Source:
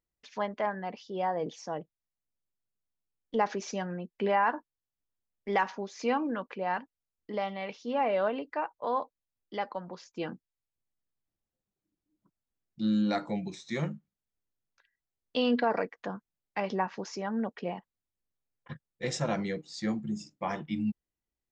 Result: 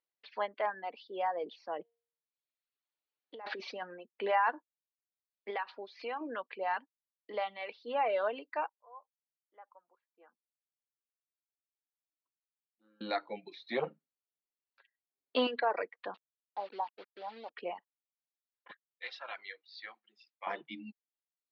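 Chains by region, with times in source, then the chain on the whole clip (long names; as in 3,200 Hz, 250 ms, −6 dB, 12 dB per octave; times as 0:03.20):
0:01.79–0:03.82: compressor whose output falls as the input rises −37 dBFS + hum removal 233.4 Hz, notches 35
0:05.50–0:06.21: low-shelf EQ 190 Hz −8.5 dB + downward compressor 3 to 1, threshold −32 dBFS
0:08.69–0:13.01: low-pass filter 1,300 Hz 24 dB per octave + first difference
0:13.69–0:15.47: low-shelf EQ 470 Hz +10 dB + comb filter 7.4 ms, depth 61% + saturating transformer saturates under 320 Hz
0:16.14–0:17.50: transistor ladder low-pass 1,000 Hz, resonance 55% + low-shelf EQ 95 Hz −5.5 dB + bit-depth reduction 8 bits, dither none
0:18.71–0:20.47: high-pass filter 1,300 Hz + high-frequency loss of the air 57 metres
whole clip: Chebyshev low-pass filter 4,400 Hz, order 5; reverb reduction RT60 0.91 s; Bessel high-pass filter 480 Hz, order 4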